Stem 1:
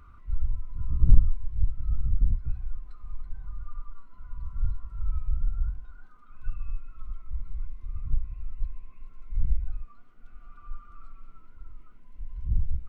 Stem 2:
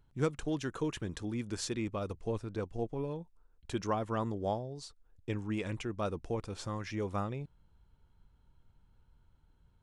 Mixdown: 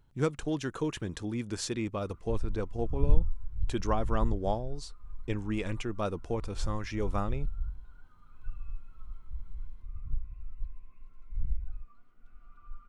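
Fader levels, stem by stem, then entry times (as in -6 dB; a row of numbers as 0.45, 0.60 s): -6.5, +2.5 dB; 2.00, 0.00 s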